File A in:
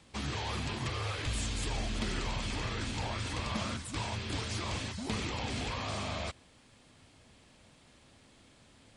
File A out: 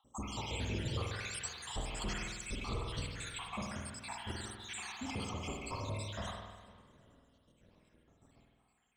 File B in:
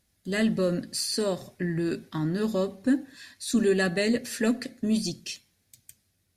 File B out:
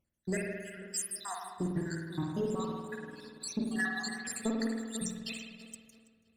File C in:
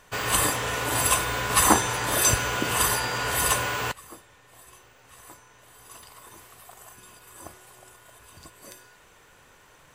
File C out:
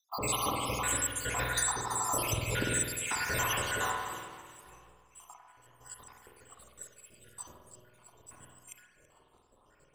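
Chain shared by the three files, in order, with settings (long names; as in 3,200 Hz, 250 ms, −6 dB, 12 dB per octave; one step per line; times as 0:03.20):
time-frequency cells dropped at random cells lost 79%
parametric band 7,800 Hz +12 dB 0.26 octaves
on a send: delay that swaps between a low-pass and a high-pass 165 ms, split 1,500 Hz, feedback 68%, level −11 dB
on the sum: downward compressor 5 to 1, threshold −28 dBFS
leveller curve on the samples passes 1
spring reverb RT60 1.3 s, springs 49 ms, chirp 30 ms, DRR 0 dB
one half of a high-frequency compander decoder only
level −4.5 dB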